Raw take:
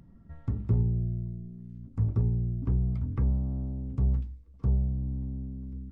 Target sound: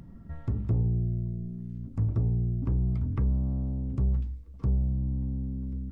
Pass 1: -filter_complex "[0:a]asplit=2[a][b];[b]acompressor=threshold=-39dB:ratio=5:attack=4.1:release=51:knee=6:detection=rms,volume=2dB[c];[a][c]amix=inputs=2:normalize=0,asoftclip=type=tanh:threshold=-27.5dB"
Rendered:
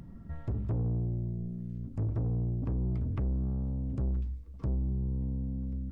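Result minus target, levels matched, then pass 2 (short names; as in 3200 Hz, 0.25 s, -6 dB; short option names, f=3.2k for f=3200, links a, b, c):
soft clip: distortion +9 dB
-filter_complex "[0:a]asplit=2[a][b];[b]acompressor=threshold=-39dB:ratio=5:attack=4.1:release=51:knee=6:detection=rms,volume=2dB[c];[a][c]amix=inputs=2:normalize=0,asoftclip=type=tanh:threshold=-19dB"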